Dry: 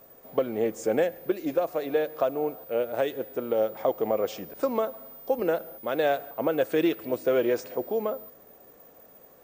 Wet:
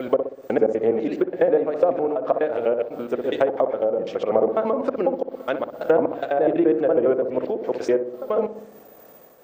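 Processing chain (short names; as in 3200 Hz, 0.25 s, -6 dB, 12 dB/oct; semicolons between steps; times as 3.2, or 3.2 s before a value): slices in reverse order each 83 ms, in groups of 6; low shelf 130 Hz -9.5 dB; treble ducked by the level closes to 940 Hz, closed at -21.5 dBFS; on a send: darkening echo 62 ms, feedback 64%, low-pass 820 Hz, level -6 dB; on the sum: noise-modulated level, depth 65%; gain +9 dB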